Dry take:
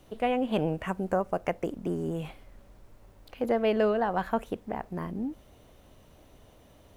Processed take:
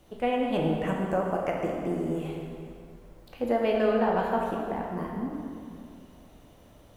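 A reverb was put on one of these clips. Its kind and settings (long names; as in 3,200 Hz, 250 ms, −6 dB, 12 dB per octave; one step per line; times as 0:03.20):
dense smooth reverb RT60 2.4 s, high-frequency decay 0.75×, DRR −1 dB
level −2 dB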